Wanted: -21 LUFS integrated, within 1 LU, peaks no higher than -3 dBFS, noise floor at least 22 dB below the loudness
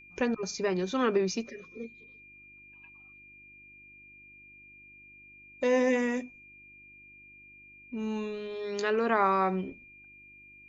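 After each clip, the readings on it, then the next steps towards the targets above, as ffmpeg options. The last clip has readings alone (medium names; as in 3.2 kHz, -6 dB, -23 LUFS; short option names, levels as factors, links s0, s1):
hum 50 Hz; highest harmonic 350 Hz; hum level -64 dBFS; steady tone 2.4 kHz; tone level -51 dBFS; loudness -29.5 LUFS; peak level -13.5 dBFS; loudness target -21.0 LUFS
-> -af "bandreject=f=50:t=h:w=4,bandreject=f=100:t=h:w=4,bandreject=f=150:t=h:w=4,bandreject=f=200:t=h:w=4,bandreject=f=250:t=h:w=4,bandreject=f=300:t=h:w=4,bandreject=f=350:t=h:w=4"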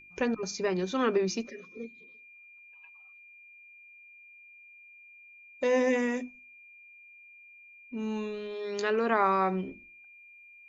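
hum not found; steady tone 2.4 kHz; tone level -51 dBFS
-> -af "bandreject=f=2400:w=30"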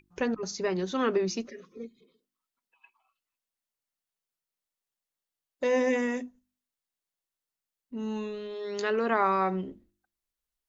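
steady tone not found; loudness -29.5 LUFS; peak level -13.5 dBFS; loudness target -21.0 LUFS
-> -af "volume=2.66"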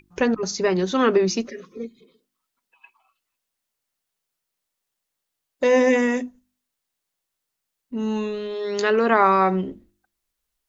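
loudness -21.0 LUFS; peak level -5.0 dBFS; noise floor -82 dBFS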